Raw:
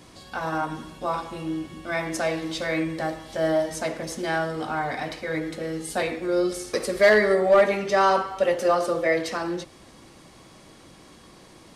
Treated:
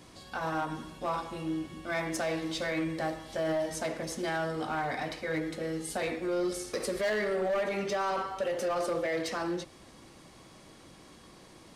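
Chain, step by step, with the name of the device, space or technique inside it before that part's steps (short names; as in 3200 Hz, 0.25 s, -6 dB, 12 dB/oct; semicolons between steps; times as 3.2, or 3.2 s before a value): limiter into clipper (limiter -18 dBFS, peak gain reduction 8 dB; hard clip -22 dBFS, distortion -17 dB); gain -4 dB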